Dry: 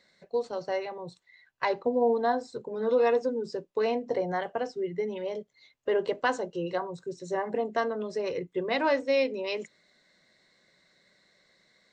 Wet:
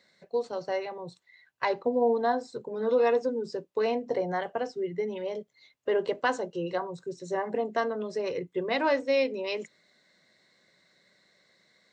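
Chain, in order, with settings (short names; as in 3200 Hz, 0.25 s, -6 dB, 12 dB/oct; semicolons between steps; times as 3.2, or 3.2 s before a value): HPF 74 Hz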